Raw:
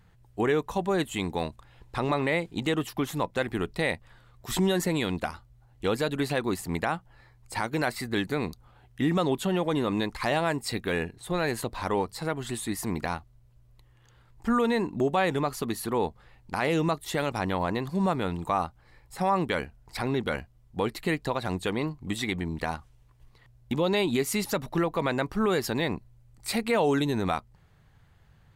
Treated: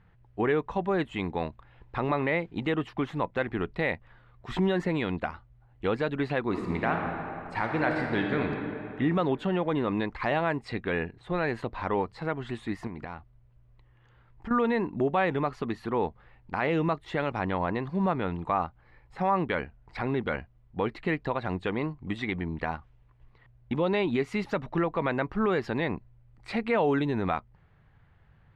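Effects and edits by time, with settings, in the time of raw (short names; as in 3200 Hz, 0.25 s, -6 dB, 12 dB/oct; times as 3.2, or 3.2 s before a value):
6.45–8.45 reverb throw, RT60 2.7 s, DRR 1 dB
12.87–14.51 compressor 12:1, threshold -32 dBFS
whole clip: Chebyshev low-pass 2200 Hz, order 2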